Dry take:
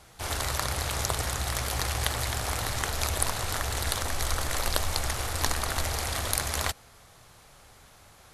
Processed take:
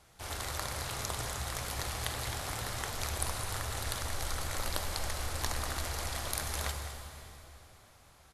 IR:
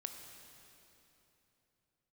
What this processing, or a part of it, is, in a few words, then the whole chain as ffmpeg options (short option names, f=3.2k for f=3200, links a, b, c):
cave: -filter_complex "[0:a]aecho=1:1:210:0.224[a];[1:a]atrim=start_sample=2205[b];[a][b]afir=irnorm=-1:irlink=0,volume=-4.5dB"